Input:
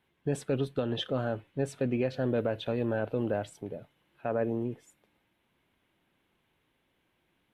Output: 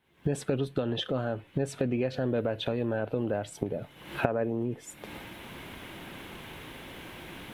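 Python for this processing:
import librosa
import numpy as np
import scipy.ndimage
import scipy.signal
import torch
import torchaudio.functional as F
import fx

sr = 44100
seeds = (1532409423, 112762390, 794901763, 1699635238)

y = fx.recorder_agc(x, sr, target_db=-23.5, rise_db_per_s=65.0, max_gain_db=30)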